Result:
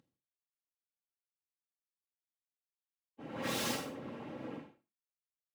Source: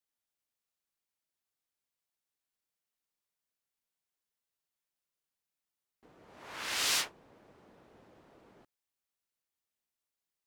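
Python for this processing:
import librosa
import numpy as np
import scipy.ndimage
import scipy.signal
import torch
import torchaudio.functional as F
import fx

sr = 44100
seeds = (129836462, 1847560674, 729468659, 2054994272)

y = fx.cvsd(x, sr, bps=16000)
y = (np.mod(10.0 ** (39.5 / 20.0) * y + 1.0, 2.0) - 1.0) / 10.0 ** (39.5 / 20.0)
y = fx.tilt_eq(y, sr, slope=-3.0)
y = fx.echo_feedback(y, sr, ms=76, feedback_pct=40, wet_db=-5.0)
y = np.maximum(y, 0.0)
y = scipy.signal.sosfilt(scipy.signal.butter(4, 110.0, 'highpass', fs=sr, output='sos'), y)
y = y + 0.4 * np.pad(y, (int(3.7 * sr / 1000.0), 0))[:len(y)]
y = fx.rev_gated(y, sr, seeds[0], gate_ms=310, shape='falling', drr_db=0.0)
y = fx.filter_lfo_notch(y, sr, shape='saw_up', hz=7.4, low_hz=590.0, high_hz=2100.0, q=1.8)
y = fx.stretch_vocoder_free(y, sr, factor=0.53)
y = F.gain(torch.from_numpy(y), 15.5).numpy()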